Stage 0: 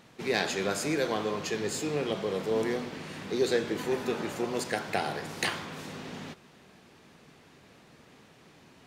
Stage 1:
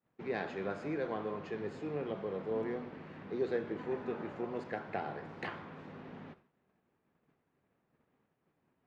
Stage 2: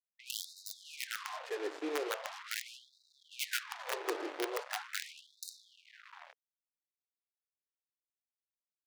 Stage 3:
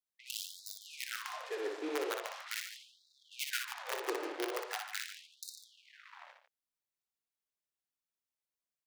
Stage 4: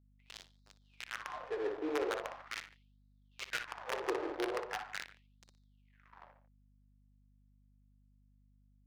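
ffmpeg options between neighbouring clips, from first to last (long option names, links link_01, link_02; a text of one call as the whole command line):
ffmpeg -i in.wav -af "lowpass=1700,agate=range=-33dB:threshold=-47dB:ratio=3:detection=peak,volume=-7dB" out.wav
ffmpeg -i in.wav -af "acrusher=bits=6:mix=0:aa=0.5,aeval=exprs='(mod(23.7*val(0)+1,2)-1)/23.7':channel_layout=same,afftfilt=real='re*gte(b*sr/1024,260*pow(3700/260,0.5+0.5*sin(2*PI*0.41*pts/sr)))':imag='im*gte(b*sr/1024,260*pow(3700/260,0.5+0.5*sin(2*PI*0.41*pts/sr)))':win_size=1024:overlap=0.75,volume=2.5dB" out.wav
ffmpeg -i in.wav -af "aecho=1:1:60|147:0.531|0.266,volume=-1.5dB" out.wav
ffmpeg -i in.wav -af "adynamicsmooth=sensitivity=6:basefreq=710,aeval=exprs='val(0)+0.000398*(sin(2*PI*50*n/s)+sin(2*PI*2*50*n/s)/2+sin(2*PI*3*50*n/s)/3+sin(2*PI*4*50*n/s)/4+sin(2*PI*5*50*n/s)/5)':channel_layout=same,volume=2dB" out.wav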